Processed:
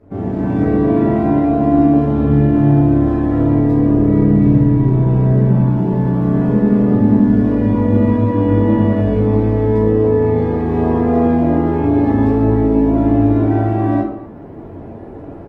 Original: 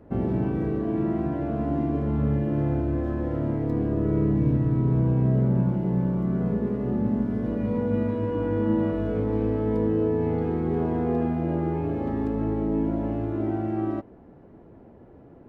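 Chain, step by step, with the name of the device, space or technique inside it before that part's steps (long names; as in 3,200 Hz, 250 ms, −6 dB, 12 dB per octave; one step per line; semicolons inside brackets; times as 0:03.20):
speakerphone in a meeting room (convolution reverb RT60 0.60 s, pre-delay 5 ms, DRR −5 dB; far-end echo of a speakerphone 240 ms, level −19 dB; automatic gain control gain up to 12 dB; level −1 dB; Opus 16 kbit/s 48,000 Hz)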